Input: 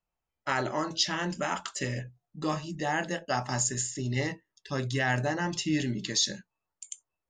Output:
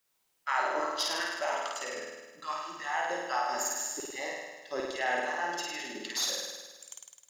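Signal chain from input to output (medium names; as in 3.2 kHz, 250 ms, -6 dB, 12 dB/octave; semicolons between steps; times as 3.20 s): tracing distortion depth 0.02 ms; high-pass 170 Hz; LFO high-pass saw down 2.5 Hz 370–1600 Hz; word length cut 12-bit, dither triangular; flutter echo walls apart 8.9 m, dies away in 1.3 s; trim -6.5 dB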